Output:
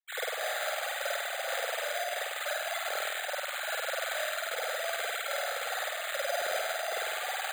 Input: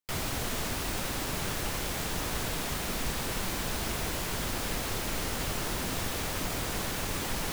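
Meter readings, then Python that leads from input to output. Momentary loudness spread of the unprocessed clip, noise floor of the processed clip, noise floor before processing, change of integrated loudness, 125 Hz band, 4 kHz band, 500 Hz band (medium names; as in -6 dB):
0 LU, -37 dBFS, -34 dBFS, -0.5 dB, under -40 dB, -0.5 dB, +4.0 dB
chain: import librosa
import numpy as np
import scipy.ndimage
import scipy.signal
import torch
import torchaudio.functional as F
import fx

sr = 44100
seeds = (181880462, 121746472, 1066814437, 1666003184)

y = fx.sine_speech(x, sr)
y = fx.fixed_phaser(y, sr, hz=1000.0, stages=6)
y = fx.rev_spring(y, sr, rt60_s=1.2, pass_ms=(49,), chirp_ms=75, drr_db=-6.0)
y = np.repeat(y[::8], 8)[:len(y)]
y = y * librosa.db_to_amplitude(-6.0)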